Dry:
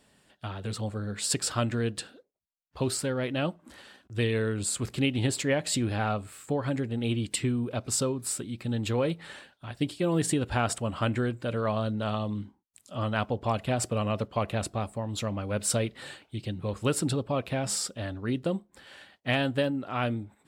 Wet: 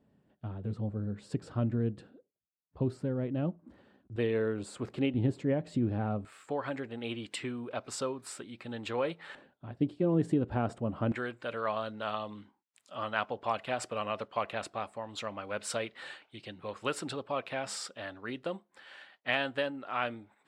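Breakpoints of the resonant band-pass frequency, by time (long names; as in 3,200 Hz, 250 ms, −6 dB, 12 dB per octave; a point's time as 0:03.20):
resonant band-pass, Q 0.6
170 Hz
from 0:04.16 550 Hz
from 0:05.14 210 Hz
from 0:06.25 1,200 Hz
from 0:09.35 270 Hz
from 0:11.12 1,500 Hz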